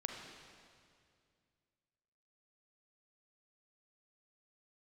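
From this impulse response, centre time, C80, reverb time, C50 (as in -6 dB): 73 ms, 4.0 dB, 2.3 s, 2.5 dB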